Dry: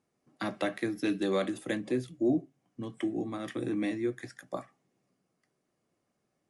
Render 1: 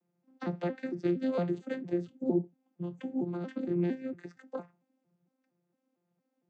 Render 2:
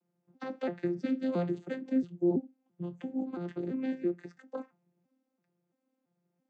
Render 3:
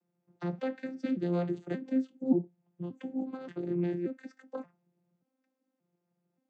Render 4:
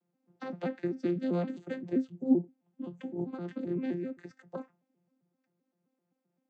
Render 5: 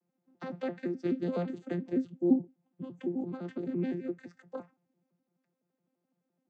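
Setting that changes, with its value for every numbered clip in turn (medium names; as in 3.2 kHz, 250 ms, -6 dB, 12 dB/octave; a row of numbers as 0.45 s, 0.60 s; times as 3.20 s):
vocoder on a broken chord, a note every: 229 ms, 336 ms, 579 ms, 130 ms, 85 ms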